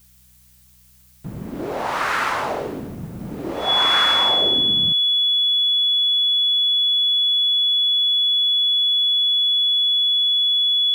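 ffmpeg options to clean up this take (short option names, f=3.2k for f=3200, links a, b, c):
-af "bandreject=f=62.5:t=h:w=4,bandreject=f=125:t=h:w=4,bandreject=f=187.5:t=h:w=4,bandreject=f=3.4k:w=30,agate=range=-21dB:threshold=-44dB"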